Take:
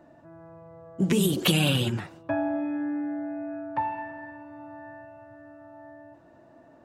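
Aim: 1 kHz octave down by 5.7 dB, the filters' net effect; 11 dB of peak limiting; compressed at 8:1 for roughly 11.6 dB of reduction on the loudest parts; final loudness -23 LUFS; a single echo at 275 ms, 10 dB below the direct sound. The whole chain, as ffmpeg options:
-af "equalizer=f=1000:t=o:g=-7,acompressor=threshold=0.0282:ratio=8,alimiter=level_in=2.24:limit=0.0631:level=0:latency=1,volume=0.447,aecho=1:1:275:0.316,volume=7.5"

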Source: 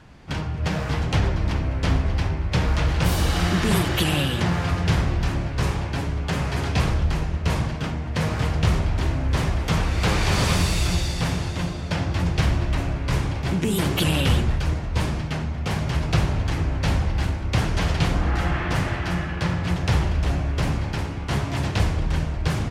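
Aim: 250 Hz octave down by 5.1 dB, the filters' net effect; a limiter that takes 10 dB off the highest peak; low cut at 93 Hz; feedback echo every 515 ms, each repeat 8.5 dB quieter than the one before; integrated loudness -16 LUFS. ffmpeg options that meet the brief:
-af "highpass=93,equalizer=f=250:t=o:g=-8.5,alimiter=limit=0.106:level=0:latency=1,aecho=1:1:515|1030|1545|2060:0.376|0.143|0.0543|0.0206,volume=4.47"

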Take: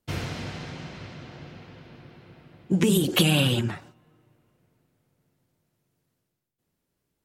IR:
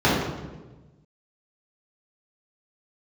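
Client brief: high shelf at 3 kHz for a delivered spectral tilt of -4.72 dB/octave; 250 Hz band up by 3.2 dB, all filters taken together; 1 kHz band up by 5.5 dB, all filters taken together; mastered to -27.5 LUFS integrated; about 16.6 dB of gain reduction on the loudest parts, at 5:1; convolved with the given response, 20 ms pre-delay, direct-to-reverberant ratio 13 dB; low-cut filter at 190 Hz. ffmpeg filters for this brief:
-filter_complex "[0:a]highpass=190,equalizer=f=250:t=o:g=7,equalizer=f=1000:t=o:g=6.5,highshelf=f=3000:g=3.5,acompressor=threshold=0.0224:ratio=5,asplit=2[s0][s1];[1:a]atrim=start_sample=2205,adelay=20[s2];[s1][s2]afir=irnorm=-1:irlink=0,volume=0.0188[s3];[s0][s3]amix=inputs=2:normalize=0,volume=2.99"

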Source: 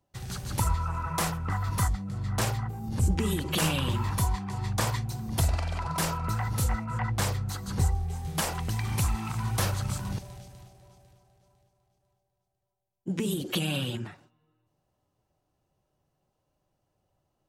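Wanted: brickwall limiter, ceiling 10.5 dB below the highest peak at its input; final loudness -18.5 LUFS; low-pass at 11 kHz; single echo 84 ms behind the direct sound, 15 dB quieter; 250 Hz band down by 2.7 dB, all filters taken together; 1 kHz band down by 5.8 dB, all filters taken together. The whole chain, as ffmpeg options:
-af "lowpass=11000,equalizer=f=250:t=o:g=-4,equalizer=f=1000:t=o:g=-7,alimiter=level_in=1.12:limit=0.0631:level=0:latency=1,volume=0.891,aecho=1:1:84:0.178,volume=6.31"

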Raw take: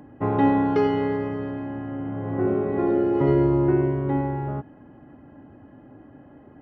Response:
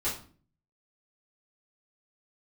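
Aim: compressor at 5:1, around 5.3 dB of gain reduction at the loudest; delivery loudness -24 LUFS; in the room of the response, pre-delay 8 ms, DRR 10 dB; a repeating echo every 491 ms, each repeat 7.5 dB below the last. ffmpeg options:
-filter_complex "[0:a]acompressor=threshold=0.0891:ratio=5,aecho=1:1:491|982|1473|1964|2455:0.422|0.177|0.0744|0.0312|0.0131,asplit=2[s0][s1];[1:a]atrim=start_sample=2205,adelay=8[s2];[s1][s2]afir=irnorm=-1:irlink=0,volume=0.15[s3];[s0][s3]amix=inputs=2:normalize=0,volume=1.12"

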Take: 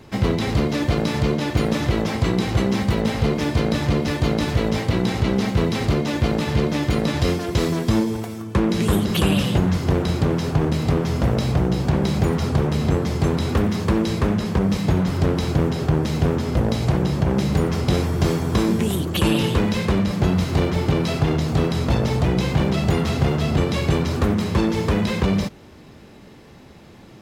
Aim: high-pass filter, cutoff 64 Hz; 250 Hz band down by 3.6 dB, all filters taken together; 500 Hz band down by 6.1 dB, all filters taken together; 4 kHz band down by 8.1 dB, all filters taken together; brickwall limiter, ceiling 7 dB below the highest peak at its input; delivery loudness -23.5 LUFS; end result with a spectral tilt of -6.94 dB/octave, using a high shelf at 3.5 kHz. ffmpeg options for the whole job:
-af "highpass=64,equalizer=f=250:t=o:g=-3.5,equalizer=f=500:t=o:g=-6.5,highshelf=f=3500:g=-7.5,equalizer=f=4000:t=o:g=-5.5,volume=1.26,alimiter=limit=0.211:level=0:latency=1"

